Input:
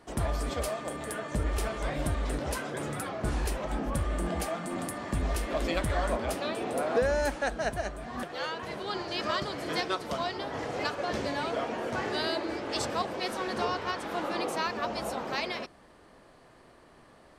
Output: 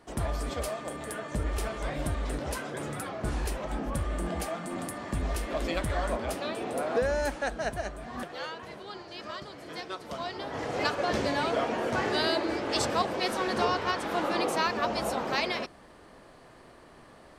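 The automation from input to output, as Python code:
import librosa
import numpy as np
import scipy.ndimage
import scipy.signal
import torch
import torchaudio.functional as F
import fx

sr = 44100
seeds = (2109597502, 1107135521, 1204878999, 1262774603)

y = fx.gain(x, sr, db=fx.line((8.24, -1.0), (9.03, -9.0), (9.74, -9.0), (10.87, 3.5)))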